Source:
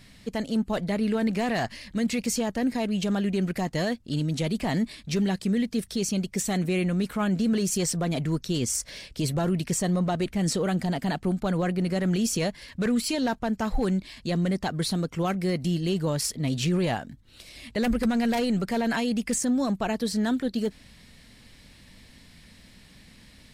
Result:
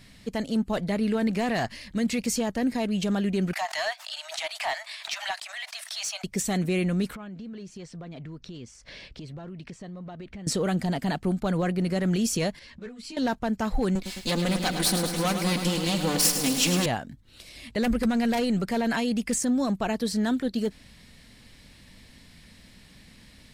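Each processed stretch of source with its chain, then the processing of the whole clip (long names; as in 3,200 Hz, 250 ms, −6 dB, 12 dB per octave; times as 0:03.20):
0:03.53–0:06.24: Butterworth high-pass 630 Hz 96 dB per octave + mid-hump overdrive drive 11 dB, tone 4,400 Hz, clips at −18 dBFS + background raised ahead of every attack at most 96 dB per second
0:07.15–0:10.47: downward compressor 8 to 1, threshold −37 dBFS + low-pass filter 3,900 Hz
0:12.59–0:13.17: low-pass filter 6,500 Hz + downward compressor 12 to 1, threshold −33 dBFS + string-ensemble chorus
0:13.95–0:16.86: lower of the sound and its delayed copy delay 4 ms + high-shelf EQ 2,200 Hz +10 dB + feedback echo at a low word length 106 ms, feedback 80%, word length 8 bits, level −8 dB
whole clip: no processing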